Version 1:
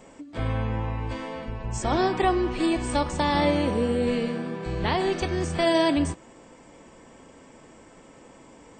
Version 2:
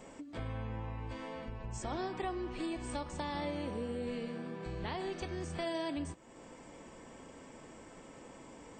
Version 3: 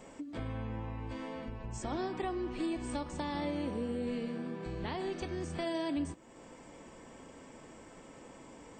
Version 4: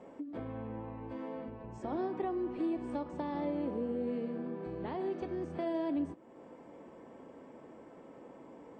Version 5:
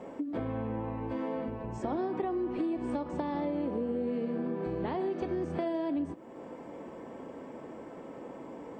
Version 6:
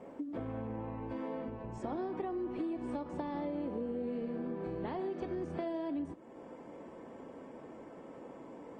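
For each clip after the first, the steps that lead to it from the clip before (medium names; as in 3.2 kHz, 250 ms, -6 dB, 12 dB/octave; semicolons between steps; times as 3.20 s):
compression 2:1, threshold -43 dBFS, peak gain reduction 14 dB; trim -2.5 dB
dynamic bell 270 Hz, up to +5 dB, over -53 dBFS, Q 1.6
band-pass filter 430 Hz, Q 0.64; trim +2 dB
compression, threshold -37 dBFS, peak gain reduction 7 dB; trim +8 dB
trim -5 dB; Opus 24 kbps 48 kHz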